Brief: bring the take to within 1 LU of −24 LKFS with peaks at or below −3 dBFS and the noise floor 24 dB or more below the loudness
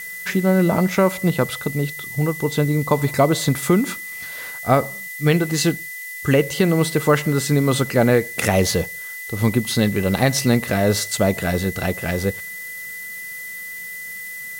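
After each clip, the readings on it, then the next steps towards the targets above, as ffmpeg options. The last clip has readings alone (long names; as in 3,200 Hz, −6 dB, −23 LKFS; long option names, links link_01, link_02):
interfering tone 2,000 Hz; level of the tone −31 dBFS; background noise floor −33 dBFS; target noise floor −45 dBFS; integrated loudness −20.5 LKFS; sample peak −3.5 dBFS; target loudness −24.0 LKFS
→ -af "bandreject=frequency=2000:width=30"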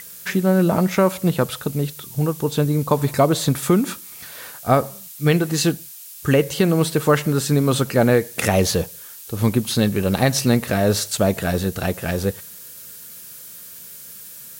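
interfering tone none found; background noise floor −39 dBFS; target noise floor −44 dBFS
→ -af "afftdn=noise_reduction=6:noise_floor=-39"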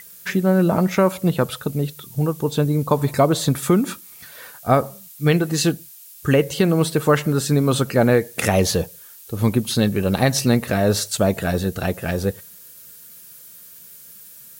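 background noise floor −44 dBFS; integrated loudness −20.0 LKFS; sample peak −4.0 dBFS; target loudness −24.0 LKFS
→ -af "volume=-4dB"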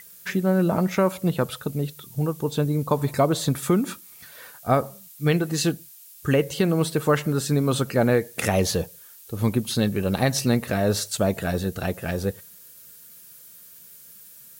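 integrated loudness −24.0 LKFS; sample peak −8.0 dBFS; background noise floor −48 dBFS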